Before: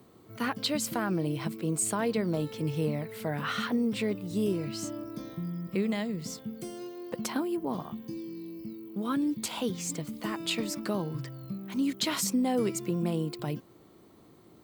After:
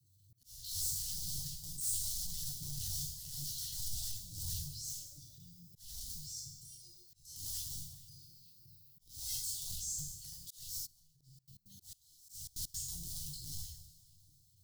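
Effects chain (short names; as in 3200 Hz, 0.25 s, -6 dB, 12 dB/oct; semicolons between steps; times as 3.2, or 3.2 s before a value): resonator bank G2 minor, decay 0.22 s; rotary speaker horn 8 Hz; wrapped overs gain 37.5 dB; inverse Chebyshev band-stop 210–2500 Hz, stop band 40 dB; two-slope reverb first 0.79 s, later 3.1 s, from -20 dB, DRR -5 dB; transient shaper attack -8 dB, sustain +1 dB; 10.85–12.9 step gate "....xx.x.xxx" 166 bpm -24 dB; auto swell 0.36 s; LFO bell 2.3 Hz 240–2600 Hz +11 dB; gain +6.5 dB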